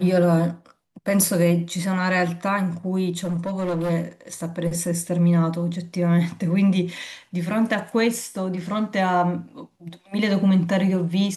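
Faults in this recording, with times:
3.24–3.91 clipped -21 dBFS

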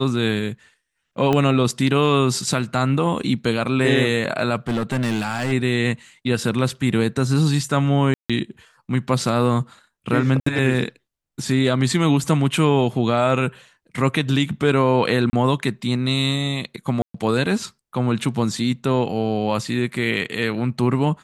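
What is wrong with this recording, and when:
1.33 pop -8 dBFS
4.68–5.53 clipped -17.5 dBFS
8.14–8.3 gap 0.156 s
10.4–10.46 gap 64 ms
15.3–15.33 gap 30 ms
17.02–17.14 gap 0.124 s

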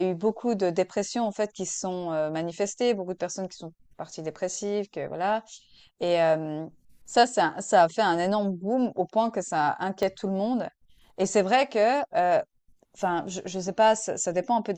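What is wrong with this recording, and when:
10.03 pop -15 dBFS

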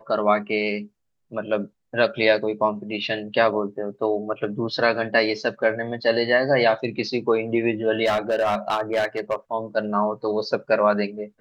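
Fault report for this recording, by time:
8.05–9.35 clipped -17 dBFS

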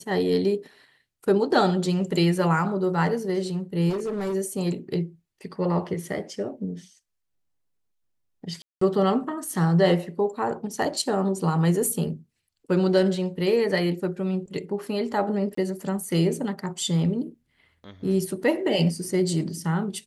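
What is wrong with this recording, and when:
3.89–4.35 clipped -24.5 dBFS
8.62–8.81 gap 0.194 s
15.55–15.57 gap 24 ms

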